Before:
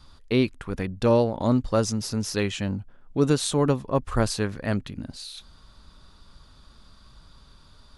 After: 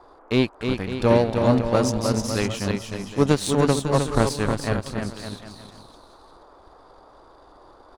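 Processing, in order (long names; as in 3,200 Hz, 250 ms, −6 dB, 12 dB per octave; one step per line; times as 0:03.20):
bouncing-ball delay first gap 310 ms, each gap 0.8×, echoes 5
power curve on the samples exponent 1.4
noise in a band 280–1,200 Hz −56 dBFS
level +5 dB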